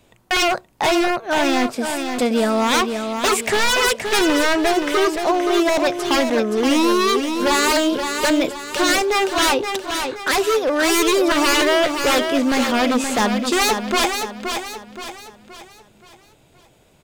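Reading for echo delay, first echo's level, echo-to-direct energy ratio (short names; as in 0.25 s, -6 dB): 0.523 s, -6.5 dB, -5.5 dB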